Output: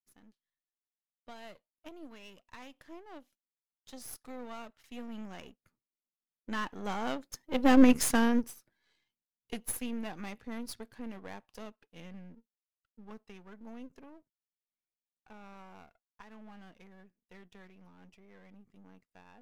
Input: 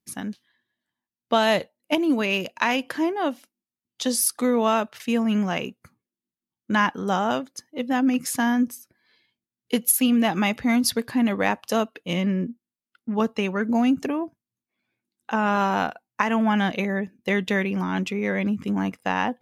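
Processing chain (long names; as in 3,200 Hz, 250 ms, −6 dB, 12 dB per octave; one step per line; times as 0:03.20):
gain on one half-wave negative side −12 dB
source passing by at 0:07.83, 11 m/s, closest 2.4 metres
level +5 dB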